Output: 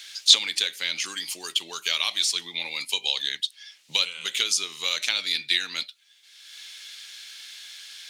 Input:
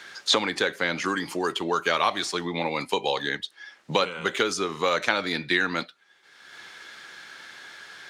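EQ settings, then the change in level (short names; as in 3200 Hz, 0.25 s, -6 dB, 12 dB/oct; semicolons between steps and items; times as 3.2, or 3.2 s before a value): pre-emphasis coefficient 0.9; resonant high shelf 2000 Hz +6.5 dB, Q 1.5; bell 3200 Hz +4.5 dB 1.7 oct; +1.0 dB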